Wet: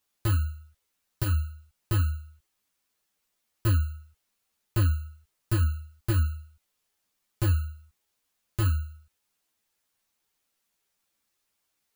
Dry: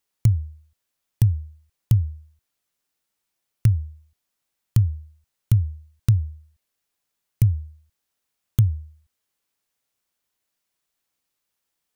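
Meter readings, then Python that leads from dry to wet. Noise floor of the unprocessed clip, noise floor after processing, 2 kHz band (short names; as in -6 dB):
-80 dBFS, -79 dBFS, n/a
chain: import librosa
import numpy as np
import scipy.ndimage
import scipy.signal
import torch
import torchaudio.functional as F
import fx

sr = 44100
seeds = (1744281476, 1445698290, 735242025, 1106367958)

y = fx.bit_reversed(x, sr, seeds[0], block=32)
y = 10.0 ** (-21.5 / 20.0) * np.tanh(y / 10.0 ** (-21.5 / 20.0))
y = fx.ensemble(y, sr)
y = y * librosa.db_to_amplitude(5.0)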